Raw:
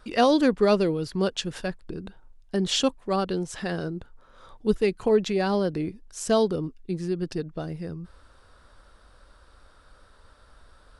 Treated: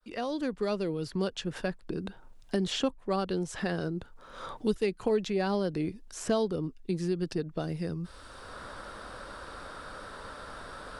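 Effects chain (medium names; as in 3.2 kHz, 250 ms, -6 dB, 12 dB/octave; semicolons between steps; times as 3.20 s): fade-in on the opening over 1.77 s; three bands compressed up and down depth 70%; trim -3 dB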